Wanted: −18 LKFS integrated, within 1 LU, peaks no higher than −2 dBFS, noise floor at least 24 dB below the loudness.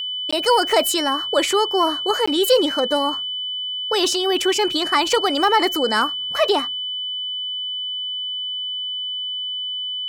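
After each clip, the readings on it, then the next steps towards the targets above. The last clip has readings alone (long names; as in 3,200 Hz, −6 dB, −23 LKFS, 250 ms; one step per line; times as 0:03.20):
number of dropouts 2; longest dropout 15 ms; interfering tone 3,000 Hz; level of the tone −24 dBFS; integrated loudness −20.0 LKFS; sample peak −5.5 dBFS; target loudness −18.0 LKFS
→ repair the gap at 0:00.31/0:02.26, 15 ms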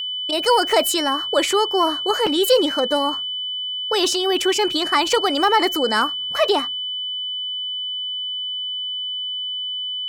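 number of dropouts 0; interfering tone 3,000 Hz; level of the tone −24 dBFS
→ notch filter 3,000 Hz, Q 30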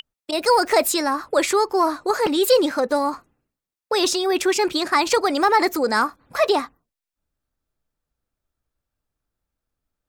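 interfering tone none found; integrated loudness −20.0 LKFS; sample peak −6.0 dBFS; target loudness −18.0 LKFS
→ level +2 dB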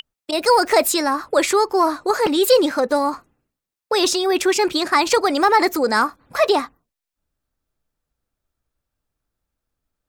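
integrated loudness −18.0 LKFS; sample peak −4.0 dBFS; background noise floor −85 dBFS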